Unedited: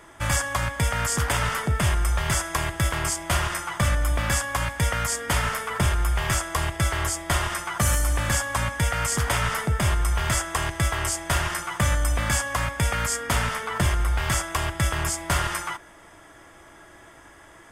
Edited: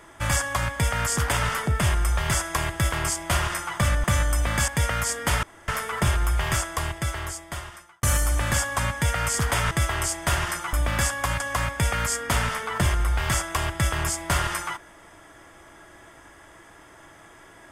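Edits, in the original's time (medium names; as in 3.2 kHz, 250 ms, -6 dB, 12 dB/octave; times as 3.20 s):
4.04–4.71 s: swap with 11.76–12.40 s
5.46 s: insert room tone 0.25 s
6.22–7.81 s: fade out
9.49–10.74 s: delete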